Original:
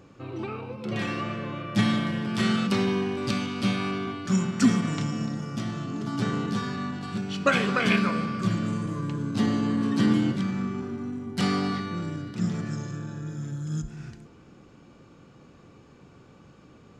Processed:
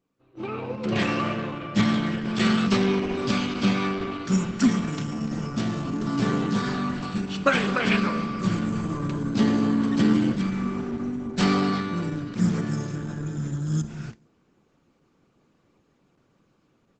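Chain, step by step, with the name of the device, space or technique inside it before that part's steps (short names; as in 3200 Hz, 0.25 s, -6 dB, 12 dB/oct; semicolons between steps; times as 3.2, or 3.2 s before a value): video call (HPF 130 Hz 12 dB/oct; AGC gain up to 14 dB; gate -28 dBFS, range -18 dB; gain -7 dB; Opus 12 kbps 48000 Hz)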